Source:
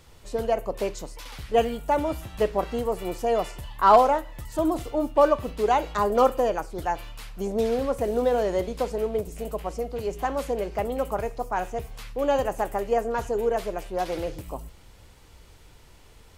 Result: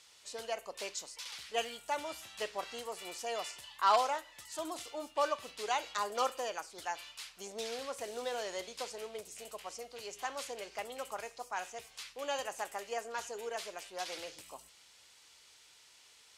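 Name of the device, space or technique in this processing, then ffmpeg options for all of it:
piezo pickup straight into a mixer: -af "lowpass=5900,aderivative,volume=6.5dB"

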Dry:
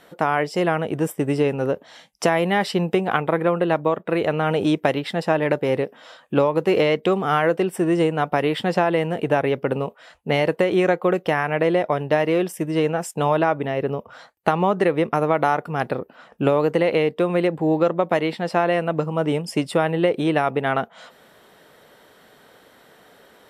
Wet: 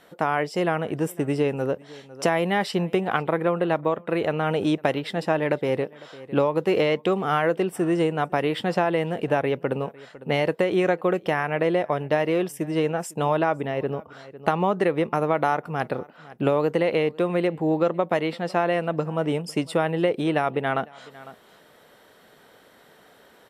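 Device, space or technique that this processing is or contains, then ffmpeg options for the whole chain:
ducked delay: -filter_complex "[0:a]asplit=3[link_01][link_02][link_03];[link_02]adelay=503,volume=-8.5dB[link_04];[link_03]apad=whole_len=1058444[link_05];[link_04][link_05]sidechaincompress=threshold=-35dB:ratio=6:attack=16:release=690[link_06];[link_01][link_06]amix=inputs=2:normalize=0,volume=-3dB"

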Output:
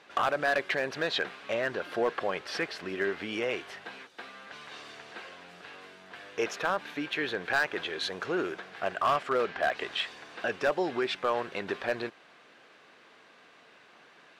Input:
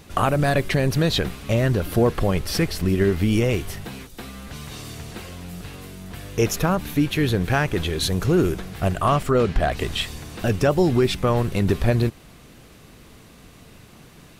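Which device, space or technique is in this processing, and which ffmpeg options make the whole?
megaphone: -af "highpass=550,lowpass=3500,equalizer=frequency=1600:width_type=o:width=0.24:gain=6,asoftclip=type=hard:threshold=-16dB,volume=-3.5dB"

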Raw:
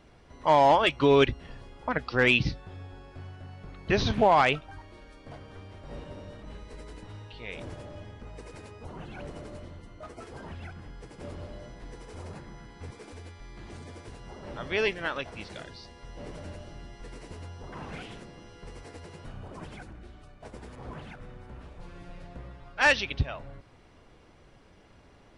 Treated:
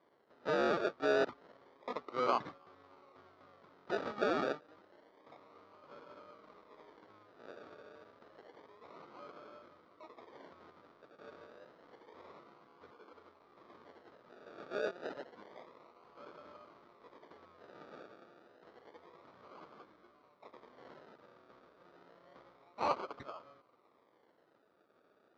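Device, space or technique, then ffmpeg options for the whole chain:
circuit-bent sampling toy: -af "acrusher=samples=33:mix=1:aa=0.000001:lfo=1:lforange=19.8:lforate=0.29,highpass=450,equalizer=frequency=780:width_type=q:width=4:gain=-5,equalizer=frequency=1200:width_type=q:width=4:gain=7,equalizer=frequency=1700:width_type=q:width=4:gain=-4,equalizer=frequency=2700:width_type=q:width=4:gain=-8,lowpass=frequency=4900:width=0.5412,lowpass=frequency=4900:width=1.3066,aemphasis=mode=reproduction:type=75kf,volume=-6dB"

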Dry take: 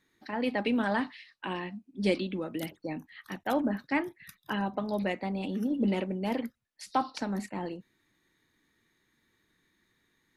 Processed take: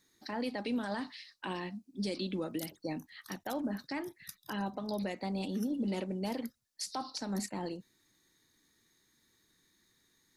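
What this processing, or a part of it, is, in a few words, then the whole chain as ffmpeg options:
over-bright horn tweeter: -af "highshelf=frequency=3600:width_type=q:width=1.5:gain=8.5,alimiter=level_in=1dB:limit=-24dB:level=0:latency=1:release=153,volume=-1dB,volume=-1.5dB"

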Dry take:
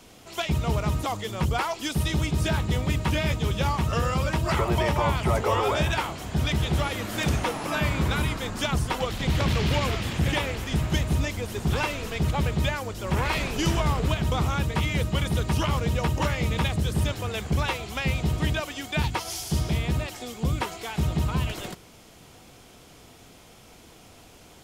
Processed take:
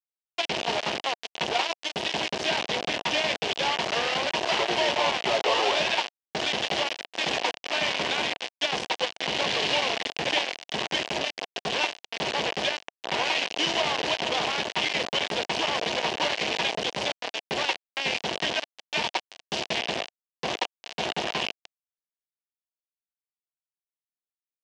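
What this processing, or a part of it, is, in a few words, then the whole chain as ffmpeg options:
hand-held game console: -filter_complex "[0:a]asettb=1/sr,asplit=3[link_01][link_02][link_03];[link_01]atrim=end=8.764[link_04];[link_02]atrim=start=8.76:end=9.68,asetpts=PTS-STARTPTS,afade=type=in:duration=0.004:curve=qsin,afade=type=out:start_time=0.916:duration=0.004:curve=qsin,bandreject=frequency=110.1:width_type=h:width=4,bandreject=frequency=220.2:width_type=h:width=4,bandreject=frequency=330.3:width_type=h:width=4,bandreject=frequency=440.4:width_type=h:width=4,bandreject=frequency=550.5:width_type=h:width=4,bandreject=frequency=660.6:width_type=h:width=4,bandreject=frequency=770.7:width_type=h:width=4,bandreject=frequency=880.8:width_type=h:width=4,bandreject=frequency=990.9:width_type=h:width=4,bandreject=frequency=1101:width_type=h:width=4[link_05];[link_03]atrim=start=9.676[link_06];[link_04][link_05]acrossfade=duration=0.004:curve1=hsin:curve2=qsin[link_07];[link_07][link_06]acrossfade=duration=0.004:curve1=qsin:curve2=hsin,acrusher=bits=3:mix=0:aa=0.000001,highpass=410,equalizer=frequency=710:width_type=q:width=4:gain=4,equalizer=frequency=1300:width_type=q:width=4:gain=-9,equalizer=frequency=2900:width_type=q:width=4:gain=6,lowpass=frequency=5400:width=0.5412,lowpass=frequency=5400:width=1.3066"

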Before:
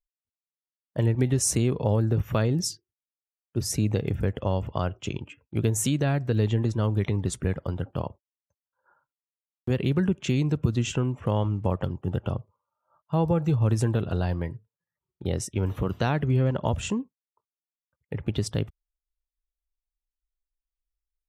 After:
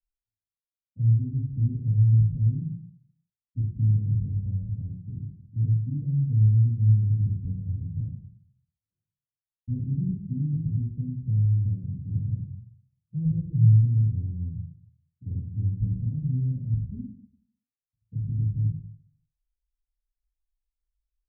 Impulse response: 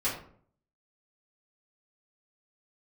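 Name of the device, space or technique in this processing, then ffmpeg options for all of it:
club heard from the street: -filter_complex "[0:a]alimiter=limit=-15.5dB:level=0:latency=1:release=416,lowpass=frequency=180:width=0.5412,lowpass=frequency=180:width=1.3066[link_01];[1:a]atrim=start_sample=2205[link_02];[link_01][link_02]afir=irnorm=-1:irlink=0,volume=-6dB"

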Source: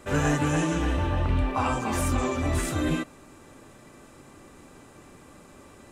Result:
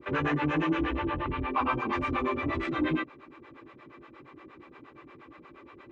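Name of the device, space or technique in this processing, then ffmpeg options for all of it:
guitar amplifier with harmonic tremolo: -filter_complex "[0:a]acrossover=split=430[link_01][link_02];[link_01]aeval=exprs='val(0)*(1-1/2+1/2*cos(2*PI*8.5*n/s))':channel_layout=same[link_03];[link_02]aeval=exprs='val(0)*(1-1/2-1/2*cos(2*PI*8.5*n/s))':channel_layout=same[link_04];[link_03][link_04]amix=inputs=2:normalize=0,asoftclip=type=tanh:threshold=-23.5dB,highpass=76,equalizer=frequency=89:width_type=q:width=4:gain=-9,equalizer=frequency=190:width_type=q:width=4:gain=-9,equalizer=frequency=340:width_type=q:width=4:gain=8,equalizer=frequency=680:width_type=q:width=4:gain=-6,equalizer=frequency=1100:width_type=q:width=4:gain=6,equalizer=frequency=2200:width_type=q:width=4:gain=6,lowpass=frequency=3500:width=0.5412,lowpass=frequency=3500:width=1.3066,volume=2.5dB"

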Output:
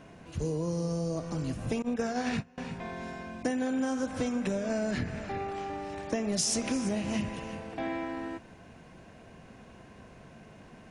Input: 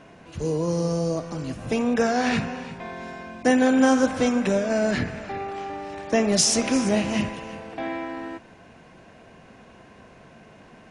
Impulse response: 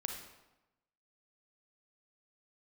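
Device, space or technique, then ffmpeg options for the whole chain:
ASMR close-microphone chain: -filter_complex "[0:a]asettb=1/sr,asplit=3[link_01][link_02][link_03];[link_01]atrim=end=1.824[link_04];[link_02]atrim=start=1.82:end=2.58,asetpts=PTS-STARTPTS,afade=type=in:duration=0.004:curve=qsin,afade=type=out:start_time=0.756:duration=0.004:curve=qsin,agate=range=-24dB:threshold=-22dB:ratio=16:detection=peak[link_05];[link_03]atrim=start=2.576[link_06];[link_04][link_05]acrossfade=duration=0.004:curve1=hsin:curve2=qsin[link_07];[link_07][link_06]acrossfade=duration=0.004:curve1=qsin:curve2=hsin,lowshelf=frequency=220:gain=7,acompressor=threshold=-22dB:ratio=10,highshelf=frequency=8400:gain=8,volume=-5dB"

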